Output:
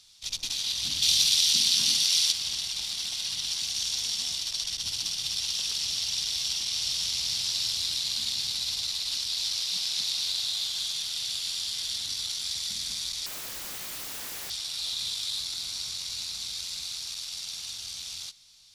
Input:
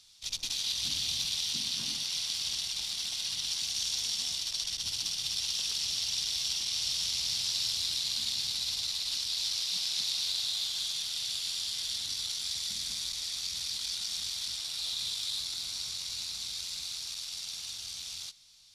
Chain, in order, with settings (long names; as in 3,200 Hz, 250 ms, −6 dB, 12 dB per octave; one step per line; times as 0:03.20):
0:01.02–0:02.32: high-shelf EQ 2,100 Hz +9.5 dB
0:13.26–0:14.50: wrap-around overflow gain 35 dB
level +2.5 dB